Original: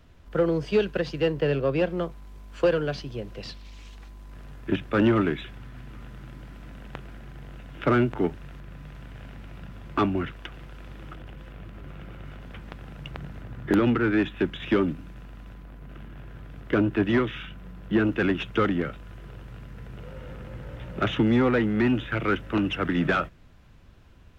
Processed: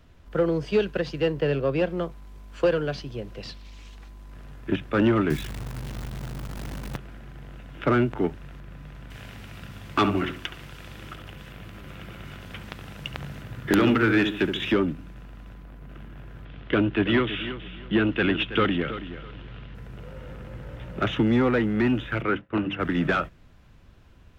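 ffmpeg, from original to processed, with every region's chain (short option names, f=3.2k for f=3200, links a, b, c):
-filter_complex "[0:a]asettb=1/sr,asplit=3[a][b][c];[a]atrim=end=5.304[d];[b]atrim=start=5.3:end=6.97,asetpts=PTS-STARTPTS,afade=t=in:d=0.004:c=qsin,afade=t=out:st=1.666:d=0.004:c=qsin,highpass=51,bass=f=250:g=10,treble=f=4k:g=0,acrusher=bits=7:dc=4:mix=0:aa=0.000001[e];[c]atrim=start=6.966[f];[d][e]acrossfade=d=0.004:c1=hsin:c2=qsin[g];[g][f]acrossfade=d=0.004:c1=qsin:c2=hsin,asettb=1/sr,asplit=3[h][i][j];[h]atrim=end=9.104[k];[i]atrim=start=9.1:end=14.72,asetpts=PTS-STARTPTS,afade=t=in:d=0.004:c=qsin,afade=t=out:st=5.616:d=0.004:c=qsin,highshelf=f=2.1k:g=12,asplit=2[l][m];[m]adelay=70,lowpass=f=1.1k:p=1,volume=-6dB,asplit=2[n][o];[o]adelay=70,lowpass=f=1.1k:p=1,volume=0.4,asplit=2[p][q];[q]adelay=70,lowpass=f=1.1k:p=1,volume=0.4,asplit=2[r][s];[s]adelay=70,lowpass=f=1.1k:p=1,volume=0.4,asplit=2[t][u];[u]adelay=70,lowpass=f=1.1k:p=1,volume=0.4[v];[l][n][p][r][t][v]amix=inputs=6:normalize=0,atrim=end_sample=247842[w];[j]atrim=start=14.716[x];[k][w]acrossfade=d=0.004:c1=hsin:c2=qsin[y];[y][x]acrossfade=d=0.004:c1=qsin:c2=hsin,asettb=1/sr,asplit=3[z][aa][ab];[z]atrim=end=16.454[ac];[aa]atrim=start=16.45:end=19.75,asetpts=PTS-STARTPTS,afade=t=in:d=0.004:c=qsin,afade=t=out:st=3.296:d=0.004:c=qsin,lowpass=f=3.3k:t=q:w=2.5,aecho=1:1:326|652|978:0.237|0.0569|0.0137,atrim=end_sample=145530[ad];[ab]atrim=start=19.746[ae];[ac][ad]acrossfade=d=0.004:c1=hsin:c2=qsin[af];[af][ae]acrossfade=d=0.004:c1=qsin:c2=hsin,asettb=1/sr,asplit=3[ag][ah][ai];[ag]atrim=end=22.224[aj];[ah]atrim=start=22.22:end=22.8,asetpts=PTS-STARTPTS,afade=t=in:d=0.004:c=qsin,afade=t=out:st=0.576:d=0.004:c=qsin,lowpass=2.9k,bandreject=f=50:t=h:w=6,bandreject=f=100:t=h:w=6,bandreject=f=150:t=h:w=6,bandreject=f=200:t=h:w=6,bandreject=f=250:t=h:w=6,bandreject=f=300:t=h:w=6,agate=range=-33dB:threshold=-33dB:ratio=3:release=100:detection=peak[ak];[ai]atrim=start=22.796[al];[aj][ak]acrossfade=d=0.004:c1=hsin:c2=qsin[am];[am][al]acrossfade=d=0.004:c1=qsin:c2=hsin"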